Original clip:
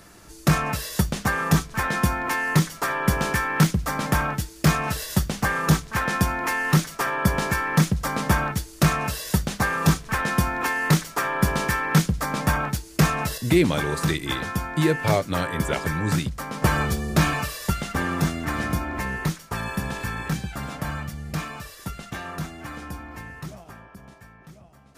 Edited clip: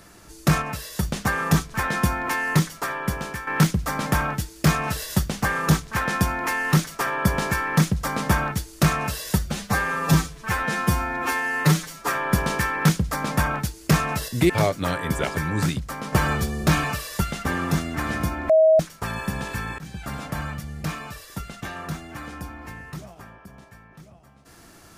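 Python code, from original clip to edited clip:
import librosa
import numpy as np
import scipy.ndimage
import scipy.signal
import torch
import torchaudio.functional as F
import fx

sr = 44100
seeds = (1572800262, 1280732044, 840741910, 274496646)

y = fx.edit(x, sr, fx.clip_gain(start_s=0.62, length_s=0.41, db=-4.0),
    fx.fade_out_to(start_s=2.54, length_s=0.93, floor_db=-11.0),
    fx.stretch_span(start_s=9.39, length_s=1.81, factor=1.5),
    fx.cut(start_s=13.59, length_s=1.4),
    fx.bleep(start_s=18.99, length_s=0.3, hz=636.0, db=-11.5),
    fx.fade_in_from(start_s=20.28, length_s=0.28, floor_db=-22.0), tone=tone)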